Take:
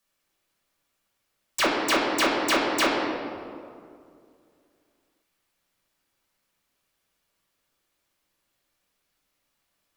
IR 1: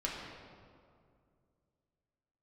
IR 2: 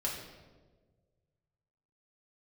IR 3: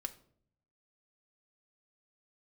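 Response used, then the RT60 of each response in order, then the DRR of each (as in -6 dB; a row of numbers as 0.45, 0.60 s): 1; 2.3, 1.5, 0.60 s; -4.5, -4.0, 4.5 dB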